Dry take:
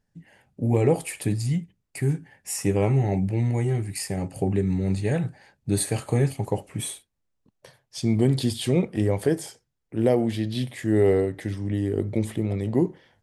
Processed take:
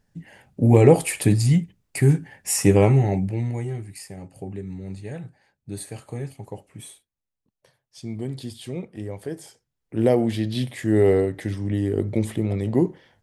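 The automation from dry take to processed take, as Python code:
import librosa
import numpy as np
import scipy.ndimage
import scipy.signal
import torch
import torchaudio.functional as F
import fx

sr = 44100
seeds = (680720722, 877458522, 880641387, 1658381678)

y = fx.gain(x, sr, db=fx.line((2.76, 7.0), (3.23, 0.0), (4.15, -10.0), (9.26, -10.0), (9.96, 2.0)))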